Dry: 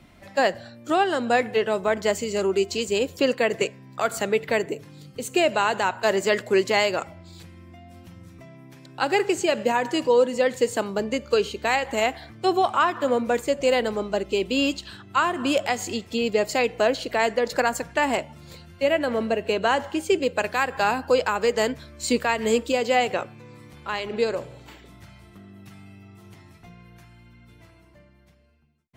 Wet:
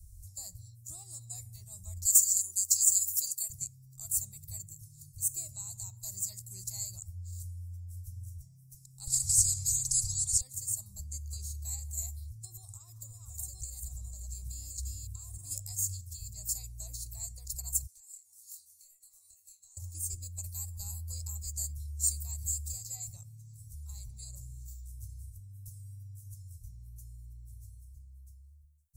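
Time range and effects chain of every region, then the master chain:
2.05–3.50 s: high-pass 100 Hz + tone controls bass -14 dB, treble +13 dB
9.07–10.41 s: low-pass 7.1 kHz + comb 2.6 ms + spectrum-flattening compressor 4:1
12.44–15.51 s: chunks repeated in reverse 587 ms, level -4 dB + compression, threshold -22 dBFS
17.86–19.77 s: high-pass 1.3 kHz + compression 8:1, threshold -42 dBFS + doubling 25 ms -4 dB
whole clip: dynamic bell 6.8 kHz, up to -4 dB, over -48 dBFS, Q 1.8; inverse Chebyshev band-stop 220–3200 Hz, stop band 50 dB; trim +9 dB

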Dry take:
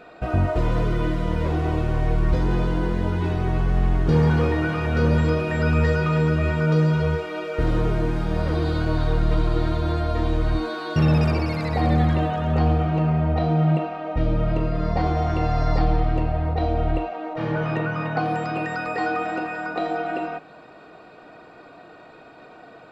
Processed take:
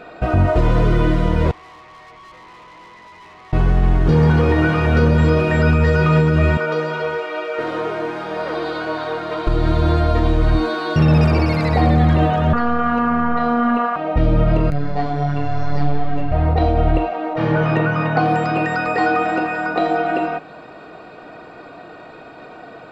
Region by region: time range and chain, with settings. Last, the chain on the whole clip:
1.51–3.53 s: two resonant band-passes 1.5 kHz, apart 0.85 oct + valve stage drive 47 dB, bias 0.55
6.57–9.47 s: high-pass 490 Hz + treble shelf 5.6 kHz -9.5 dB
12.53–13.96 s: high-order bell 1.4 kHz +15 dB 1 oct + band-stop 1.9 kHz + robot voice 238 Hz
14.70–16.32 s: hard clipper -12.5 dBFS + robot voice 144 Hz + detune thickener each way 20 cents
whole clip: treble shelf 6.3 kHz -4.5 dB; peak limiter -13.5 dBFS; trim +7.5 dB

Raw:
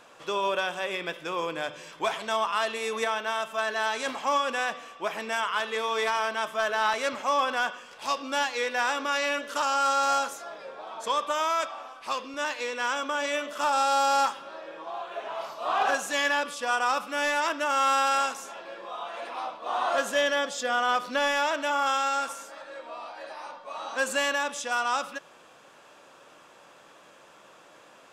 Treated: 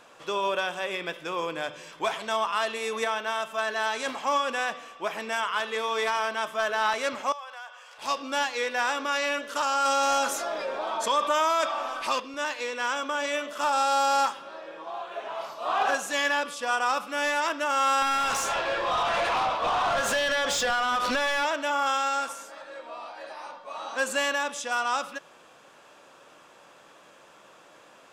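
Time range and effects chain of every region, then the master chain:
7.32–7.98 s: high-pass 570 Hz 24 dB/octave + compression 2.5:1, threshold -45 dBFS
9.85–12.20 s: comb 3.3 ms, depth 35% + level flattener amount 50%
18.02–21.45 s: compression 12:1, threshold -32 dBFS + overdrive pedal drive 24 dB, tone 5.8 kHz, clips at -17 dBFS + bass shelf 130 Hz +6.5 dB
whole clip: none

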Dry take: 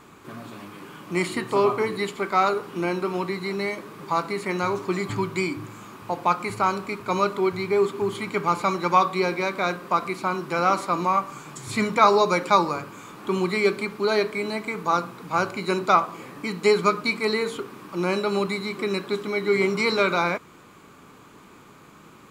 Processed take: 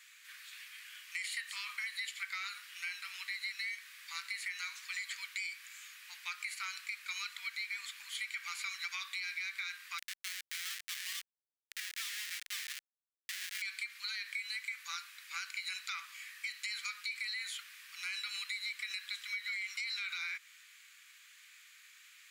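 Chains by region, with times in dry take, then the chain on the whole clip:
9.98–13.62 s: low-pass 4.2 kHz + Schmitt trigger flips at -24.5 dBFS
whole clip: elliptic high-pass 1.8 kHz, stop band 80 dB; peak limiter -25 dBFS; compression, threshold -36 dBFS

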